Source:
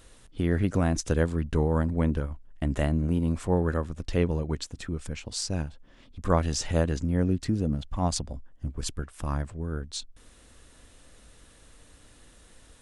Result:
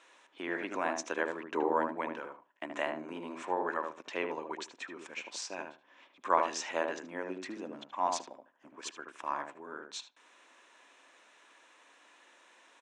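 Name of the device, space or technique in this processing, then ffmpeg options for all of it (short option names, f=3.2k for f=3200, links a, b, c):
phone speaker on a table: -filter_complex "[0:a]asettb=1/sr,asplit=3[a][b][c];[a]atrim=end=1.454[d];[b]atrim=start=1.45:end=1.92,asetpts=PTS-STARTPTS,afade=t=in:d=0.004:c=qsin,afade=t=out:st=0.466:d=0.004:c=qsin,equalizer=f=300:w=0.8:g=7[e];[c]atrim=start=1.916[f];[d][e]acrossfade=d=0.004:c1=hsin:c2=qsin[g];[g][f]acrossfade=d=0.004:c1=qsin:c2=hsin,highpass=f=370:w=0.5412,highpass=f=370:w=1.3066,equalizer=f=460:t=q:w=4:g=-8,equalizer=f=980:t=q:w=4:g=9,equalizer=f=1.7k:t=q:w=4:g=4,equalizer=f=2.4k:t=q:w=4:g=7,equalizer=f=4.7k:t=q:w=4:g=-8,lowpass=f=6.8k:w=0.5412,lowpass=f=6.8k:w=1.3066,asplit=2[h][i];[i]adelay=76,lowpass=f=1.1k:p=1,volume=-3dB,asplit=2[j][k];[k]adelay=76,lowpass=f=1.1k:p=1,volume=0.18,asplit=2[l][m];[m]adelay=76,lowpass=f=1.1k:p=1,volume=0.18[n];[h][j][l][n]amix=inputs=4:normalize=0,volume=-3.5dB"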